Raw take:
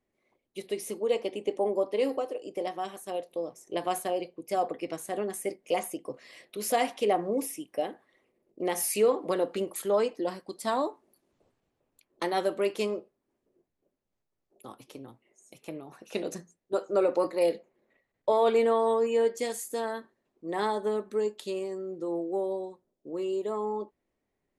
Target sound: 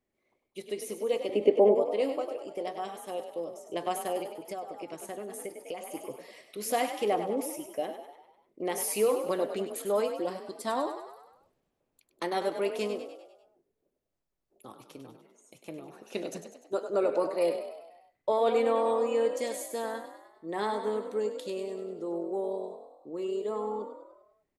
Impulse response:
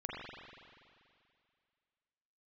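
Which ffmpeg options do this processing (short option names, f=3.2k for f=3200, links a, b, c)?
-filter_complex "[0:a]asettb=1/sr,asplit=3[a][b][c];[a]atrim=end=1.294[d];[b]atrim=start=1.29:end=1.75,asetpts=PTS-STARTPTS,afade=t=in:d=0.004:c=qsin,afade=t=out:st=0.456:d=0.004:c=qsin,equalizer=f=125:t=o:w=1:g=6,equalizer=f=250:t=o:w=1:g=8,equalizer=f=500:t=o:w=1:g=10,equalizer=f=2k:t=o:w=1:g=8,equalizer=f=8k:t=o:w=1:g=-6[e];[c]atrim=start=1.746[f];[d][e]acrossfade=d=0.004:c1=hsin:c2=qsin[g];[g][f]acrossfade=d=0.004:c1=qsin:c2=hsin,asplit=7[h][i][j][k][l][m][n];[i]adelay=99,afreqshift=38,volume=-9dB[o];[j]adelay=198,afreqshift=76,volume=-14.5dB[p];[k]adelay=297,afreqshift=114,volume=-20dB[q];[l]adelay=396,afreqshift=152,volume=-25.5dB[r];[m]adelay=495,afreqshift=190,volume=-31.1dB[s];[n]adelay=594,afreqshift=228,volume=-36.6dB[t];[h][o][p][q][r][s][t]amix=inputs=7:normalize=0,asettb=1/sr,asplit=3[u][v][w];[u]atrim=end=4.374[x];[v]atrim=start=4.37:end=5.95,asetpts=PTS-STARTPTS,afade=t=in:d=0.004:c=qsin,afade=t=out:st=1.576:d=0.004:c=qsin,acompressor=threshold=-33dB:ratio=6[y];[w]atrim=start=5.946[z];[x][y]acrossfade=d=0.004:c1=hsin:c2=qsin[aa];[aa][z]acrossfade=d=0.004:c1=qsin:c2=hsin,volume=-2.5dB"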